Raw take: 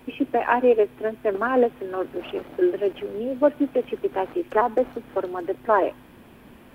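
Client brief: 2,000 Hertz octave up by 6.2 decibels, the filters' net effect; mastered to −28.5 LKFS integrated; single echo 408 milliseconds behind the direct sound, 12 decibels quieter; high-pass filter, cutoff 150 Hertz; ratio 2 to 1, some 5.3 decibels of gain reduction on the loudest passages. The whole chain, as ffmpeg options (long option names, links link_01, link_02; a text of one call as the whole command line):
ffmpeg -i in.wav -af "highpass=150,equalizer=frequency=2000:width_type=o:gain=8.5,acompressor=threshold=-22dB:ratio=2,aecho=1:1:408:0.251,volume=-2dB" out.wav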